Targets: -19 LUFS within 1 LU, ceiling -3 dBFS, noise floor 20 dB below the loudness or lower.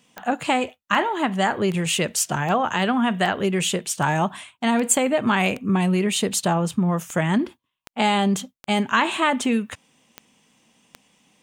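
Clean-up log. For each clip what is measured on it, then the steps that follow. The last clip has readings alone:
clicks found 15; loudness -22.0 LUFS; peak level -4.0 dBFS; loudness target -19.0 LUFS
-> de-click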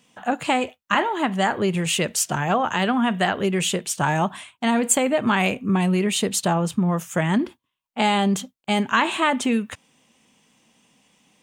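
clicks found 0; loudness -22.0 LUFS; peak level -4.0 dBFS; loudness target -19.0 LUFS
-> trim +3 dB; peak limiter -3 dBFS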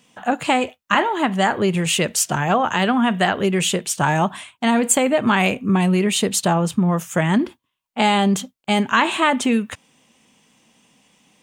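loudness -19.0 LUFS; peak level -3.0 dBFS; noise floor -73 dBFS

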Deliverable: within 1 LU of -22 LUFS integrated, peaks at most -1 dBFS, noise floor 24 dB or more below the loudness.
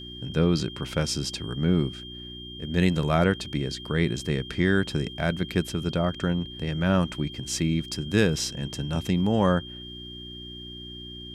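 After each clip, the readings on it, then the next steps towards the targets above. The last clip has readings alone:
hum 60 Hz; highest harmonic 360 Hz; hum level -41 dBFS; steady tone 3.2 kHz; tone level -40 dBFS; loudness -26.0 LUFS; peak level -8.5 dBFS; loudness target -22.0 LUFS
-> de-hum 60 Hz, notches 6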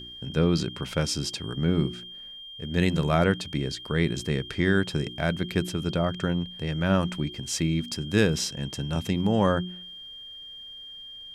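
hum not found; steady tone 3.2 kHz; tone level -40 dBFS
-> band-stop 3.2 kHz, Q 30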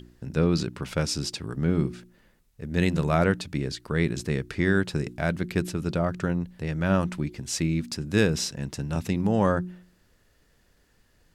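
steady tone not found; loudness -27.0 LUFS; peak level -8.5 dBFS; loudness target -22.0 LUFS
-> trim +5 dB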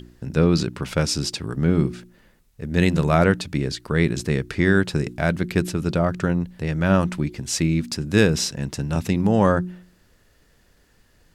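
loudness -22.0 LUFS; peak level -3.5 dBFS; noise floor -59 dBFS

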